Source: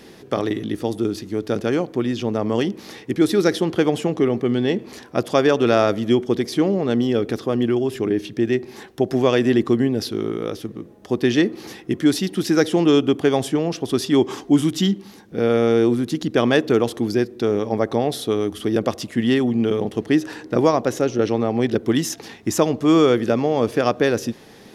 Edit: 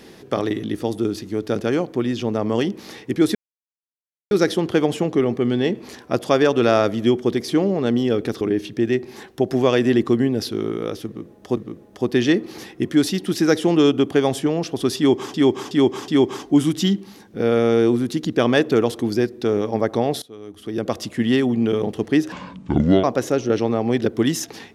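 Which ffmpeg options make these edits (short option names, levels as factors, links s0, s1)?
-filter_complex "[0:a]asplit=10[s0][s1][s2][s3][s4][s5][s6][s7][s8][s9];[s0]atrim=end=3.35,asetpts=PTS-STARTPTS,afade=t=out:st=3.346:d=0.004:c=hsin,apad=pad_dur=0.96[s10];[s1]atrim=start=3.35:end=7.452,asetpts=PTS-STARTPTS,afade=t=in:d=0.004:c=hsin[s11];[s2]atrim=start=8.008:end=11.172[s12];[s3]atrim=start=10.658:end=14.432[s13];[s4]atrim=start=14.058:end=14.432[s14];[s5]atrim=start=14.058:end=14.432[s15];[s6]atrim=start=14.058:end=18.2,asetpts=PTS-STARTPTS,afade=t=out:st=4.138:d=0.004:c=hsin:silence=0.0944061[s16];[s7]atrim=start=18.2:end=20.304,asetpts=PTS-STARTPTS,afade=t=in:d=0.77:c=qua:silence=0.0944061[s17];[s8]atrim=start=20.3:end=20.73,asetpts=PTS-STARTPTS,asetrate=26460,aresample=44100[s18];[s9]atrim=start=20.726[s19];[s10][s11]concat=n=2:v=0:a=1[s20];[s20][s12]acrossfade=d=0.004:c1=hsin:c2=hsin[s21];[s21][s13]acrossfade=d=0.004:c1=hsin:c2=hsin[s22];[s22][s14]acrossfade=d=0.004:c1=hsin:c2=hsin[s23];[s23][s15]acrossfade=d=0.004:c1=hsin:c2=hsin[s24];[s16][s17]concat=n=2:v=0:a=1[s25];[s24][s25]acrossfade=d=0.004:c1=hsin:c2=hsin[s26];[s26][s18]acrossfade=d=0.004:c1=hsin:c2=hsin[s27];[s27][s19]acrossfade=d=0.004:c1=hsin:c2=hsin"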